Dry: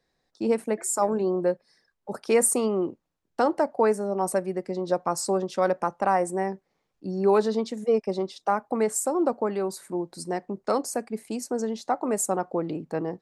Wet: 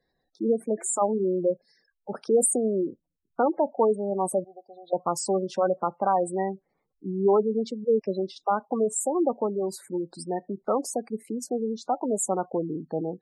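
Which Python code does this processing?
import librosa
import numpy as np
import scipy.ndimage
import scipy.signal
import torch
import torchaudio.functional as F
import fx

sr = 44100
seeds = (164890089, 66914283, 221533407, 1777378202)

y = fx.double_bandpass(x, sr, hz=1600.0, octaves=2.2, at=(4.44, 4.93))
y = fx.spec_gate(y, sr, threshold_db=-15, keep='strong')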